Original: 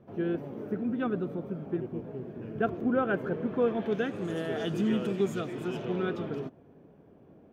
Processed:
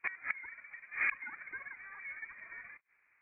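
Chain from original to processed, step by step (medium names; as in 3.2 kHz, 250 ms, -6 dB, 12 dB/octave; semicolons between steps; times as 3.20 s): gate -45 dBFS, range -25 dB; speed mistake 33 rpm record played at 78 rpm; frequency inversion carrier 2.7 kHz; inverted gate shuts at -28 dBFS, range -26 dB; trim +9 dB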